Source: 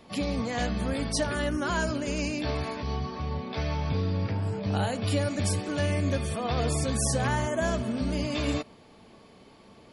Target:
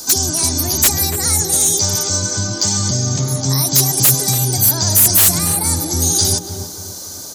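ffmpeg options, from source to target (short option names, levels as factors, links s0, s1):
-filter_complex "[0:a]acrossover=split=130[s0][s1];[s1]acompressor=threshold=0.0141:ratio=4[s2];[s0][s2]amix=inputs=2:normalize=0,aexciter=amount=14.6:drive=7.6:freq=3300,aeval=exprs='1*sin(PI/2*3.98*val(0)/1)':c=same,asplit=2[s3][s4];[s4]adelay=383,lowpass=f=800:p=1,volume=0.501,asplit=2[s5][s6];[s6]adelay=383,lowpass=f=800:p=1,volume=0.41,asplit=2[s7][s8];[s8]adelay=383,lowpass=f=800:p=1,volume=0.41,asplit=2[s9][s10];[s10]adelay=383,lowpass=f=800:p=1,volume=0.41,asplit=2[s11][s12];[s12]adelay=383,lowpass=f=800:p=1,volume=0.41[s13];[s5][s7][s9][s11][s13]amix=inputs=5:normalize=0[s14];[s3][s14]amix=inputs=2:normalize=0,asetrate=59535,aresample=44100,volume=0.531"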